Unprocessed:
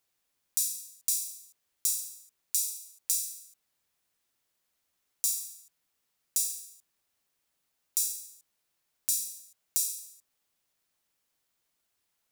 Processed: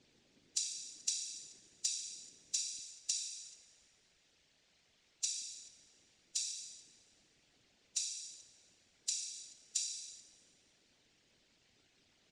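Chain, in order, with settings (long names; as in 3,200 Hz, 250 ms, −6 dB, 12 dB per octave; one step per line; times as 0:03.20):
Bessel low-pass filter 4,300 Hz, order 8
parametric band 250 Hz +14 dB 1.1 octaves, from 0:02.79 −4 dB, from 0:05.42 +4 dB
harmonic and percussive parts rebalanced percussive +5 dB
parametric band 1,100 Hz −12 dB 1.1 octaves
downward compressor 2.5 to 1, threshold −51 dBFS, peak gain reduction 11 dB
random phases in short frames
slap from a distant wall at 74 metres, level −21 dB
four-comb reverb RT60 1.9 s, combs from 27 ms, DRR 16 dB
level +12.5 dB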